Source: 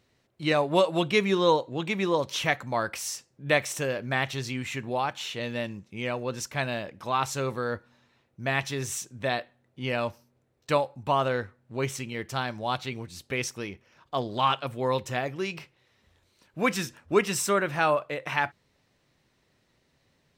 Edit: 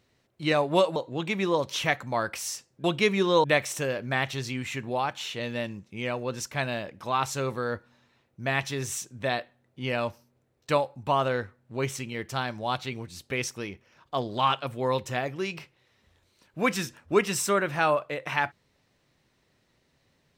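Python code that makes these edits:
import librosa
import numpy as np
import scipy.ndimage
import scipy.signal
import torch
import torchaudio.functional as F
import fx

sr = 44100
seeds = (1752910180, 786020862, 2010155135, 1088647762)

y = fx.edit(x, sr, fx.move(start_s=0.96, length_s=0.6, to_s=3.44), tone=tone)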